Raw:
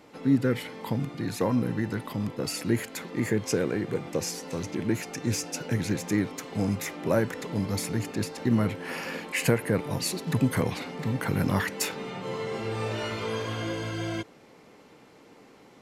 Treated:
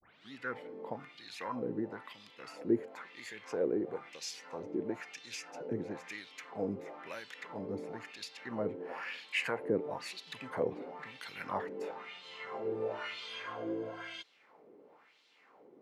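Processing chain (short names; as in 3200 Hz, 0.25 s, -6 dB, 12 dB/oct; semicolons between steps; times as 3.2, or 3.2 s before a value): tape start at the beginning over 0.32 s; wah 1 Hz 370–3800 Hz, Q 2.4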